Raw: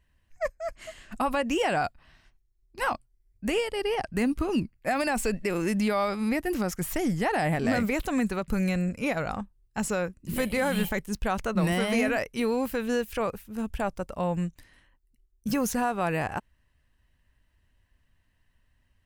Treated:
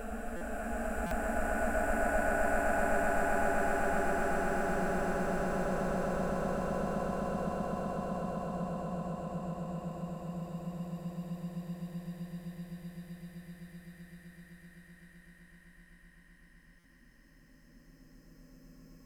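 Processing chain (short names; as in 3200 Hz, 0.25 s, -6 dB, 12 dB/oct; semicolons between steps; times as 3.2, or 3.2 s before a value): spectral swells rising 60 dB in 0.61 s; notches 50/100/150/200/250/300/350 Hz; auto swell 0.699 s; phaser stages 8, 1 Hz, lowest notch 120–4100 Hz; Paulstretch 12×, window 0.50 s, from 13.66; notch 900 Hz, Q 7.4; on a send: swelling echo 0.128 s, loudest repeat 8, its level -4 dB; on the sum: stuck buffer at 0.36/1.06/16.79, samples 256, times 8; gain -7 dB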